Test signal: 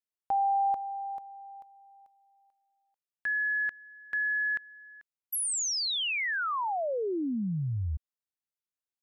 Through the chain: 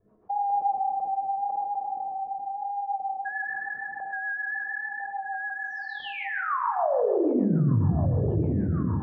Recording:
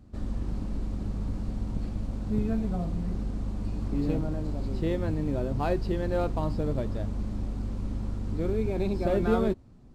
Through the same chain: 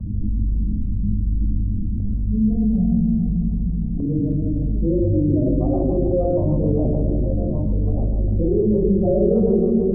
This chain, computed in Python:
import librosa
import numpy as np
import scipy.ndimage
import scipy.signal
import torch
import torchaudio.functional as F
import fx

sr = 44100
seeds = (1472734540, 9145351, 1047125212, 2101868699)

p1 = fx.spec_expand(x, sr, power=2.3)
p2 = p1 + fx.echo_thinned(p1, sr, ms=1130, feedback_pct=54, hz=170.0, wet_db=-13.0, dry=0)
p3 = fx.vibrato(p2, sr, rate_hz=0.89, depth_cents=48.0)
p4 = fx.dereverb_blind(p3, sr, rt60_s=0.51)
p5 = fx.tremolo_random(p4, sr, seeds[0], hz=2.0, depth_pct=90)
p6 = scipy.signal.sosfilt(scipy.signal.butter(4, 1100.0, 'lowpass', fs=sr, output='sos'), p5)
p7 = fx.peak_eq(p6, sr, hz=270.0, db=12.0, octaves=2.2)
p8 = fx.room_shoebox(p7, sr, seeds[1], volume_m3=2600.0, walls='mixed', distance_m=5.7)
p9 = fx.rotary(p8, sr, hz=6.7)
p10 = fx.env_flatten(p9, sr, amount_pct=70)
y = F.gain(torch.from_numpy(p10), -8.5).numpy()